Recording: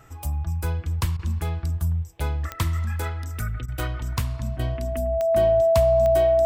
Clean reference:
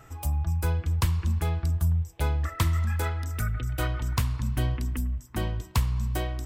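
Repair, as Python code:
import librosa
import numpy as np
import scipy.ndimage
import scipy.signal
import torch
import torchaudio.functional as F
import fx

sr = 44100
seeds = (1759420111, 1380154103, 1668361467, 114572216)

y = fx.fix_declick_ar(x, sr, threshold=10.0)
y = fx.notch(y, sr, hz=660.0, q=30.0)
y = fx.fix_interpolate(y, sr, at_s=(1.17, 3.66, 4.57), length_ms=21.0)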